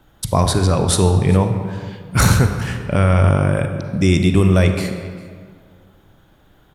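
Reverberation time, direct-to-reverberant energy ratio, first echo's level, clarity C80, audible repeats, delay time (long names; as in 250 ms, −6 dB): 2.0 s, 6.5 dB, −22.5 dB, 8.0 dB, 1, 400 ms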